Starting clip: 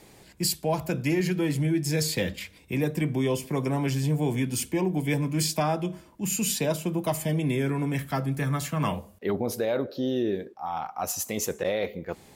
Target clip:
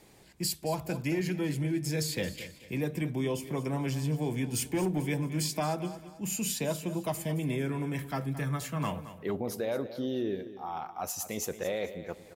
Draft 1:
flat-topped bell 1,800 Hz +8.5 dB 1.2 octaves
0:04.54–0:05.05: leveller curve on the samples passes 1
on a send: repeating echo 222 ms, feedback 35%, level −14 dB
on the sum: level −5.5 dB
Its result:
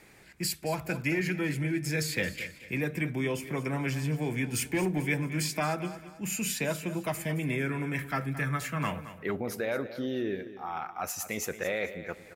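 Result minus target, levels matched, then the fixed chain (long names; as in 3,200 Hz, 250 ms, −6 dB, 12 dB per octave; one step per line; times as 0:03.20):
2,000 Hz band +7.0 dB
0:04.54–0:05.05: leveller curve on the samples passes 1
on a send: repeating echo 222 ms, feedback 35%, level −14 dB
on the sum: level −5.5 dB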